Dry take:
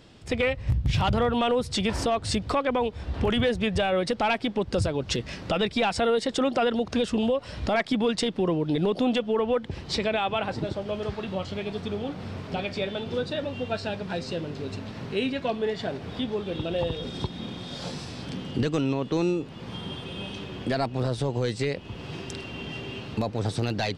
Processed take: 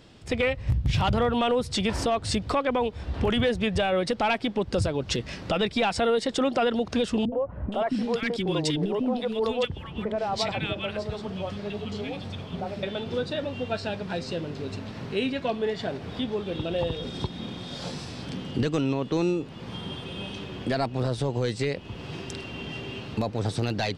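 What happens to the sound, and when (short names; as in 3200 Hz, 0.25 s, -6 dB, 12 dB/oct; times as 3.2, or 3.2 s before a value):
7.25–12.83 three bands offset in time lows, mids, highs 70/470 ms, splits 340/1400 Hz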